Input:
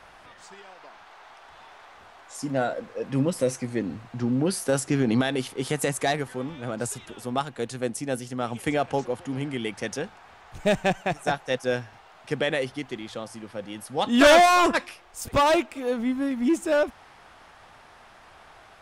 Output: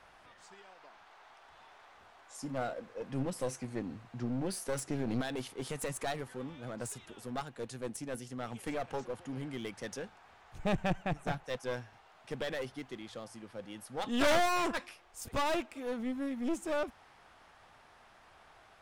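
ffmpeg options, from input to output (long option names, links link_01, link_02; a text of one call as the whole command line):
ffmpeg -i in.wav -filter_complex "[0:a]asettb=1/sr,asplit=3[link_01][link_02][link_03];[link_01]atrim=end=10.594[link_04];[link_02]atrim=start=10.59:end=11.44,asetpts=PTS-STARTPTS,afade=type=in:duration=0.004:curve=qsin,afade=type=out:start_time=0.846:duration=0.004:curve=qsin,bass=frequency=250:gain=11,treble=frequency=4000:gain=-7[link_05];[link_03]atrim=start=11.436[link_06];[link_04][link_05]acrossfade=duration=0.004:curve1=hsin:curve2=qsin[link_07];[link_07][link_06]acrossfade=duration=0.004:curve1=qsin:curve2=hsin,aeval=exprs='clip(val(0),-1,0.0422)':channel_layout=same,volume=-9dB" out.wav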